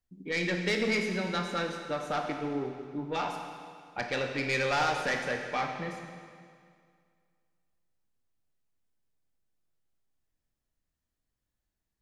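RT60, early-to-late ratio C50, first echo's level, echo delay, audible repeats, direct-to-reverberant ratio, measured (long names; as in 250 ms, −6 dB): 2.1 s, 4.5 dB, no echo audible, no echo audible, no echo audible, 3.0 dB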